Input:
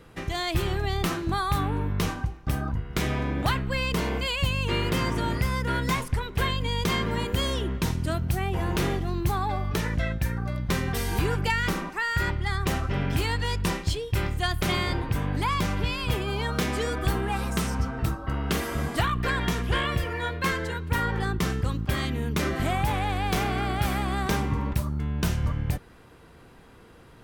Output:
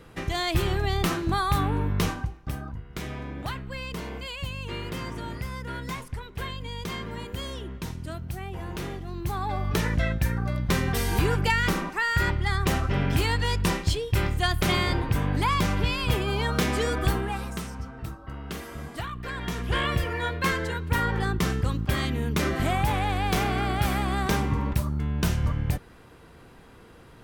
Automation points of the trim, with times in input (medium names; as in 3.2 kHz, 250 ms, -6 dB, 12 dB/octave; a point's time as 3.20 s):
2.03 s +1.5 dB
2.71 s -8 dB
9.03 s -8 dB
9.74 s +2 dB
17.04 s +2 dB
17.73 s -9 dB
19.24 s -9 dB
19.85 s +1 dB